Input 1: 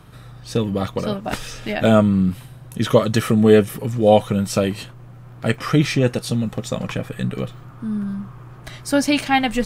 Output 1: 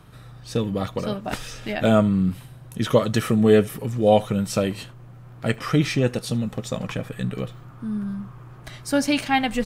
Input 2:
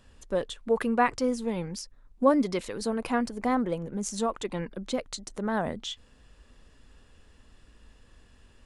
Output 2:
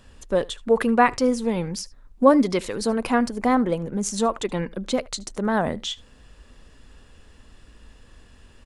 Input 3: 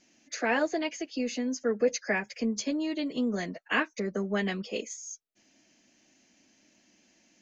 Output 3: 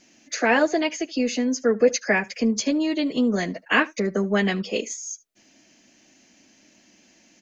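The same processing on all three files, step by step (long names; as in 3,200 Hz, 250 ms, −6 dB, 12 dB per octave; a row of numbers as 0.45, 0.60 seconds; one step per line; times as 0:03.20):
single-tap delay 75 ms −23.5 dB
loudness normalisation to −23 LKFS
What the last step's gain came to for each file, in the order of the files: −3.5, +6.5, +8.0 decibels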